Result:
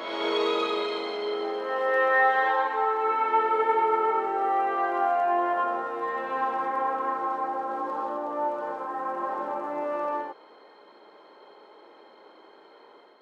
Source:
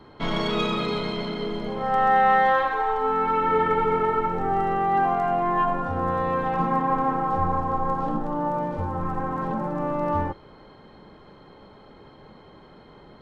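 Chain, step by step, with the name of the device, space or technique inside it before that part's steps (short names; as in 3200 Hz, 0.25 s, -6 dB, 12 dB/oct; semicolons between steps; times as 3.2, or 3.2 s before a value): ghost voice (reverse; reverb RT60 1.6 s, pre-delay 86 ms, DRR -2.5 dB; reverse; HPF 360 Hz 24 dB/oct); gain -5.5 dB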